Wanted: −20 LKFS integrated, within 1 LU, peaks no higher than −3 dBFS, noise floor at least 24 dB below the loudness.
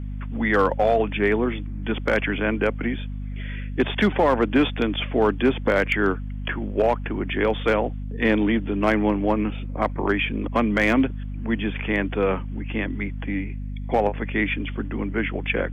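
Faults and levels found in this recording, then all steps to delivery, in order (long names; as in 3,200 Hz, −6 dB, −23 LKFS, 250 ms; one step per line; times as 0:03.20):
share of clipped samples 0.3%; peaks flattened at −11.0 dBFS; mains hum 50 Hz; hum harmonics up to 250 Hz; level of the hum −28 dBFS; integrated loudness −23.5 LKFS; sample peak −11.0 dBFS; target loudness −20.0 LKFS
→ clipped peaks rebuilt −11 dBFS
mains-hum notches 50/100/150/200/250 Hz
level +3.5 dB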